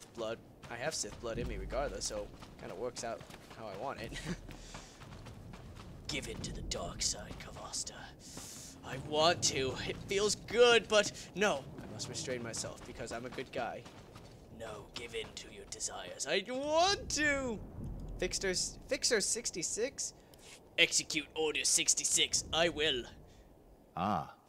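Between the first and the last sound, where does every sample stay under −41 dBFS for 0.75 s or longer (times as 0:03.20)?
0:23.08–0:23.97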